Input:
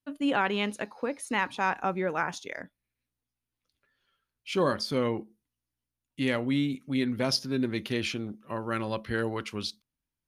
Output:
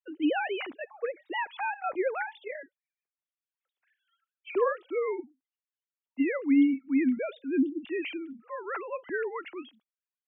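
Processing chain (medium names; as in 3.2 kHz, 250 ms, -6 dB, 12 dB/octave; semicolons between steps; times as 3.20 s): formants replaced by sine waves; spectral selection erased 7.60–7.87 s, 360–2700 Hz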